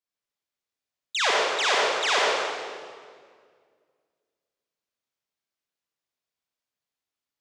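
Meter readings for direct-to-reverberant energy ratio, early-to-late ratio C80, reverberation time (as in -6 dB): -5.5 dB, -1.5 dB, 1.9 s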